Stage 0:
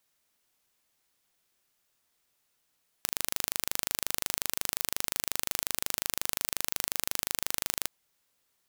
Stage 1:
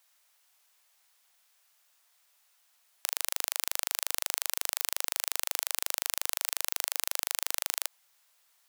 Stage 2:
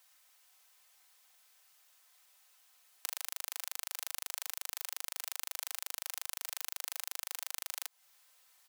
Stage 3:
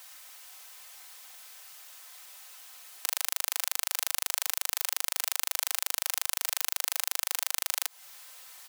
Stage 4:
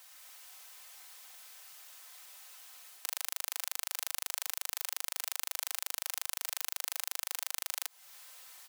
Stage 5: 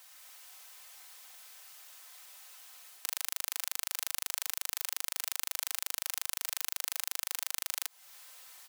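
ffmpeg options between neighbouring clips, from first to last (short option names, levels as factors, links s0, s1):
-af "highpass=f=640:w=0.5412,highpass=f=640:w=1.3066,alimiter=level_in=2.51:limit=0.891:release=50:level=0:latency=1,volume=0.891"
-af "aecho=1:1:3.9:0.51,acompressor=threshold=0.02:ratio=6,volume=1.12"
-af "alimiter=level_in=7.94:limit=0.891:release=50:level=0:latency=1,volume=0.891"
-af "dynaudnorm=f=120:g=3:m=1.41,volume=0.473"
-af "aeval=exprs='0.398*(cos(1*acos(clip(val(0)/0.398,-1,1)))-cos(1*PI/2))+0.0501*(cos(2*acos(clip(val(0)/0.398,-1,1)))-cos(2*PI/2))':c=same"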